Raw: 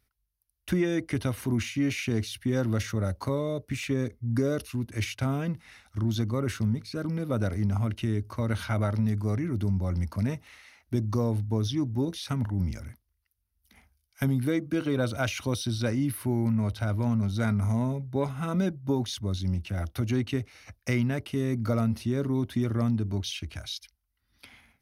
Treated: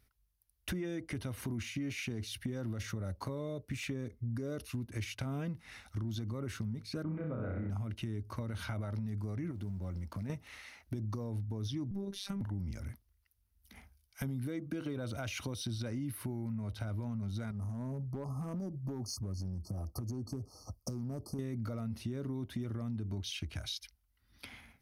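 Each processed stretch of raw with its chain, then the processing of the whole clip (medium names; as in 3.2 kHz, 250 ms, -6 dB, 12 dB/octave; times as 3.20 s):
7.03–7.70 s: low-pass 2.3 kHz 24 dB/octave + flutter echo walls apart 5.5 m, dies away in 0.76 s
9.51–10.30 s: companding laws mixed up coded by A + compression 2.5:1, threshold -38 dBFS + treble shelf 11 kHz -3.5 dB
11.91–12.41 s: robot voice 198 Hz + bass shelf 500 Hz +6 dB + compression 3:1, threshold -31 dBFS
17.51–21.39 s: brick-wall FIR band-stop 1.3–4.3 kHz + compression 10:1, threshold -31 dBFS + hard clipper -30 dBFS
whole clip: bass shelf 450 Hz +3 dB; peak limiter -20 dBFS; compression 4:1, threshold -38 dBFS; trim +1 dB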